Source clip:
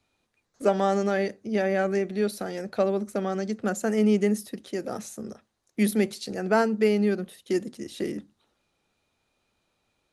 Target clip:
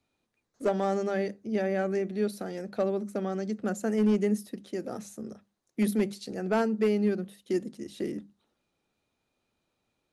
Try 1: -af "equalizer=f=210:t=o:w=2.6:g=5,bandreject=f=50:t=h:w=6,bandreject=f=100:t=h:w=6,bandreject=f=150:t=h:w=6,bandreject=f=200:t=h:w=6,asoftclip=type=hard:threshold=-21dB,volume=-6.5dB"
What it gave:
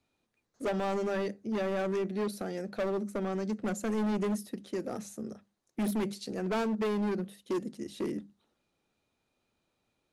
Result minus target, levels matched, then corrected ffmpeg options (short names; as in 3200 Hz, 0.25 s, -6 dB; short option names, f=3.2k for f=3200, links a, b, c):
hard clip: distortion +16 dB
-af "equalizer=f=210:t=o:w=2.6:g=5,bandreject=f=50:t=h:w=6,bandreject=f=100:t=h:w=6,bandreject=f=150:t=h:w=6,bandreject=f=200:t=h:w=6,asoftclip=type=hard:threshold=-12dB,volume=-6.5dB"